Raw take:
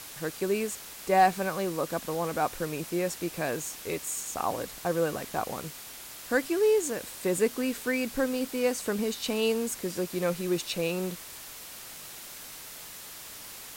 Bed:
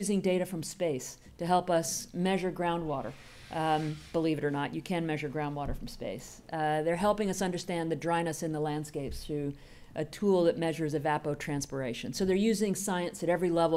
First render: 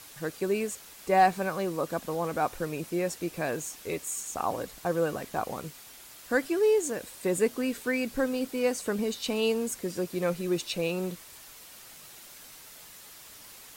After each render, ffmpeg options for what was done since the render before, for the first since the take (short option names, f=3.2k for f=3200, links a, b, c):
-af "afftdn=nr=6:nf=-44"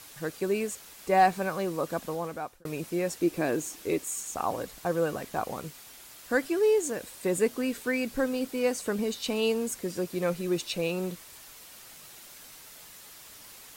-filter_complex "[0:a]asettb=1/sr,asplit=3[a][b][c];[a]atrim=end=3.214[d];[b]atrim=start=3.21:end=4.04,asetpts=PTS-STARTPTS,afade=t=in:d=0.004:c=qsin,afade=t=out:st=0.826:d=0.004:c=qsin,equalizer=f=320:t=o:w=0.75:g=9[e];[c]atrim=start=4.036[f];[d][e]acrossfade=d=0.004:c1=hsin:c2=qsin[g];[g][f]acrossfade=d=0.004:c1=qsin:c2=hsin,asplit=2[h][i];[h]atrim=end=2.65,asetpts=PTS-STARTPTS,afade=t=out:st=2.05:d=0.6[j];[i]atrim=start=2.65,asetpts=PTS-STARTPTS,afade=t=in:d=0.004:c=hsin[k];[j][k]concat=n=2:v=0:a=1"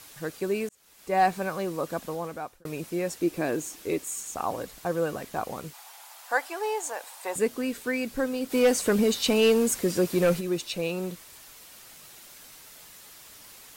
-filter_complex "[0:a]asettb=1/sr,asplit=3[a][b][c];[a]atrim=end=5.734[d];[b]atrim=start=5.73:end=7.36,asetpts=PTS-STARTPTS,afade=t=in:d=0.004:c=qsin,afade=t=out:st=1.626:d=0.004:c=qsin,highpass=f=820:t=q:w=4.3[e];[c]atrim=start=7.356[f];[d][e]acrossfade=d=0.004:c1=hsin:c2=qsin[g];[g][f]acrossfade=d=0.004:c1=qsin:c2=hsin,asplit=3[h][i][j];[h]afade=t=out:st=8.5:d=0.02[k];[i]aeval=exprs='0.2*sin(PI/2*1.58*val(0)/0.2)':c=same,afade=t=in:st=8.5:d=0.02,afade=t=out:st=10.39:d=0.02[l];[j]afade=t=in:st=10.39:d=0.02[m];[k][l][m]amix=inputs=3:normalize=0,asplit=2[n][o];[n]atrim=end=0.69,asetpts=PTS-STARTPTS,afade=t=out:st=0.686:d=0.004:c=hsin[p];[o]atrim=start=0.69,asetpts=PTS-STARTPTS,afade=t=in:d=0.59[q];[p][q]concat=n=2:v=0:a=1"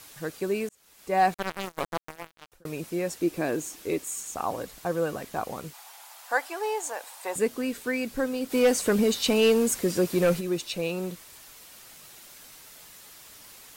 -filter_complex "[0:a]asettb=1/sr,asplit=3[a][b][c];[a]atrim=end=1.344[d];[b]atrim=start=1.34:end=2.52,asetpts=PTS-STARTPTS,afade=t=in:d=0.004:c=qsin,afade=t=out:st=1.176:d=0.004:c=qsin,acrusher=bits=3:mix=0:aa=0.5[e];[c]atrim=start=2.516[f];[d][e]acrossfade=d=0.004:c1=hsin:c2=qsin[g];[g][f]acrossfade=d=0.004:c1=qsin:c2=hsin"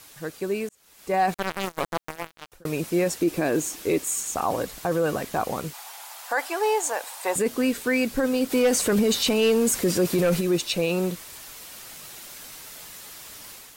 -af "dynaudnorm=f=750:g=3:m=7dB,alimiter=limit=-14dB:level=0:latency=1:release=11"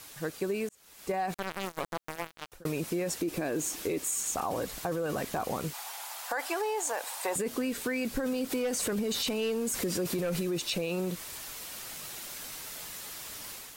-af "alimiter=limit=-19dB:level=0:latency=1:release=10,acompressor=threshold=-28dB:ratio=6"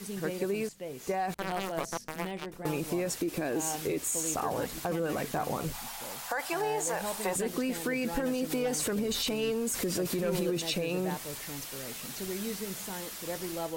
-filter_complex "[1:a]volume=-9.5dB[a];[0:a][a]amix=inputs=2:normalize=0"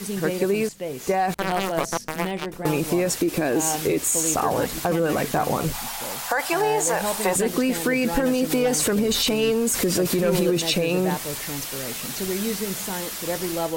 -af "volume=9.5dB"